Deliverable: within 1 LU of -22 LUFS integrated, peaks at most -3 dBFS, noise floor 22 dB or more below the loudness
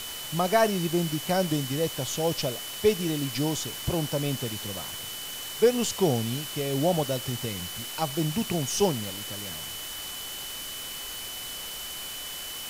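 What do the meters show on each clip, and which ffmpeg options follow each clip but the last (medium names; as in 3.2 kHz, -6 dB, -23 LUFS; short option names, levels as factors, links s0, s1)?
steady tone 3 kHz; tone level -39 dBFS; noise floor -37 dBFS; noise floor target -51 dBFS; loudness -28.5 LUFS; peak level -9.5 dBFS; loudness target -22.0 LUFS
-> -af "bandreject=f=3000:w=30"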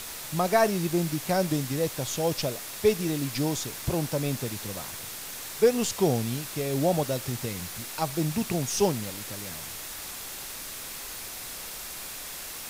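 steady tone not found; noise floor -39 dBFS; noise floor target -51 dBFS
-> -af "afftdn=nr=12:nf=-39"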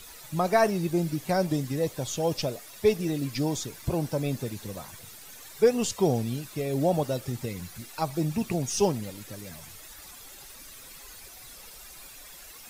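noise floor -47 dBFS; noise floor target -50 dBFS
-> -af "afftdn=nr=6:nf=-47"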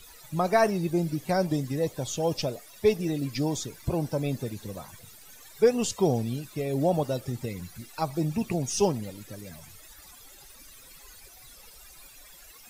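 noise floor -51 dBFS; loudness -28.0 LUFS; peak level -10.0 dBFS; loudness target -22.0 LUFS
-> -af "volume=2"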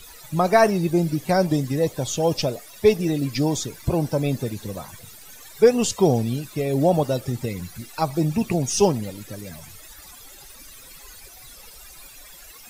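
loudness -22.0 LUFS; peak level -4.0 dBFS; noise floor -45 dBFS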